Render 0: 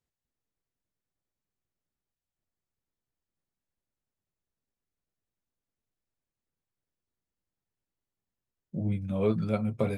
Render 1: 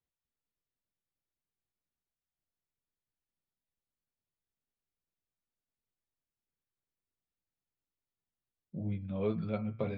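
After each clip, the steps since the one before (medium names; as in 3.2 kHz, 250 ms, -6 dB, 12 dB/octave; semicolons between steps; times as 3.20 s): steep low-pass 4.4 kHz; de-hum 112.6 Hz, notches 29; trim -6 dB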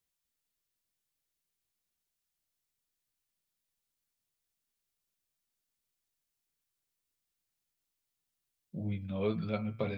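treble shelf 2.2 kHz +10.5 dB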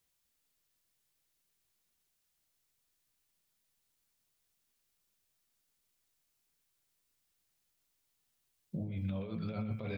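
compressor with a negative ratio -40 dBFS, ratio -1; on a send: delay 124 ms -10 dB; on the sum: trim +1 dB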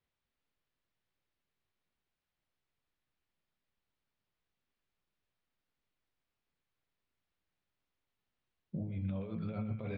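distance through air 310 m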